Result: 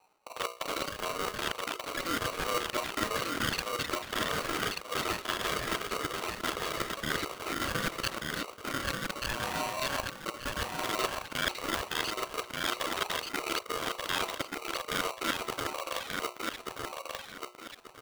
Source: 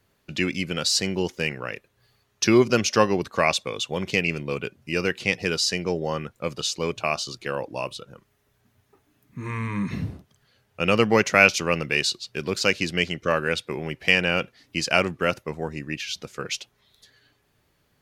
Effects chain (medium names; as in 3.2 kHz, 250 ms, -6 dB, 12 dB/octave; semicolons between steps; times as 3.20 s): time reversed locally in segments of 33 ms; reverb removal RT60 0.5 s; ever faster or slower copies 413 ms, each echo +7 st, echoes 3, each echo -6 dB; resampled via 8 kHz; level-controlled noise filter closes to 560 Hz, open at -20 dBFS; peaking EQ 140 Hz -13 dB 0.72 oct; trance gate "xxx.xxxxxx.x.x" 99 bpm -24 dB; bass shelf 330 Hz +7.5 dB; reverse; compression 5:1, threshold -30 dBFS, peak gain reduction 18 dB; reverse; hum notches 60/120/180/240/300/360/420/480 Hz; on a send: feedback delay 1184 ms, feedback 29%, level -3.5 dB; on the sum: polarity switched at an audio rate 840 Hz